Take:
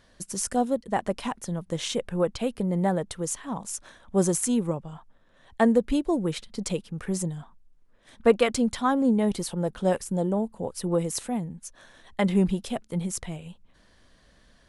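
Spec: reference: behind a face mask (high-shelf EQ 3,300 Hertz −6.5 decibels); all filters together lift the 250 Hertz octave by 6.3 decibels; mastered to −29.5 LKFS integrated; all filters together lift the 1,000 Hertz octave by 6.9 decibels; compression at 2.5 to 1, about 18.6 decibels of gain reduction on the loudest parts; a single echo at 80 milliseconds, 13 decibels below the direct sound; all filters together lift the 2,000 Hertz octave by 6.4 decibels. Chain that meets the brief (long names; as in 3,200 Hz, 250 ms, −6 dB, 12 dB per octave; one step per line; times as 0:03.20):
parametric band 250 Hz +7.5 dB
parametric band 1,000 Hz +8 dB
parametric band 2,000 Hz +7 dB
downward compressor 2.5 to 1, threshold −39 dBFS
high-shelf EQ 3,300 Hz −6.5 dB
single-tap delay 80 ms −13 dB
level +7.5 dB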